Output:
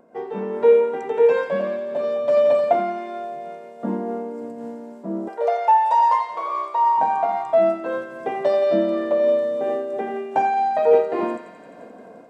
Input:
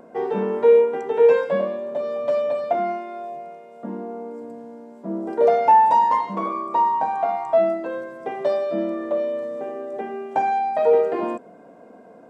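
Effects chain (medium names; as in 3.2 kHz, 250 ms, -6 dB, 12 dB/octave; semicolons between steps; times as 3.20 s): level rider gain up to 11 dB; 5.28–6.98 s: high-pass 510 Hz 24 dB/octave; thinning echo 87 ms, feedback 82%, high-pass 890 Hz, level -9 dB; random flutter of the level, depth 55%; trim -3 dB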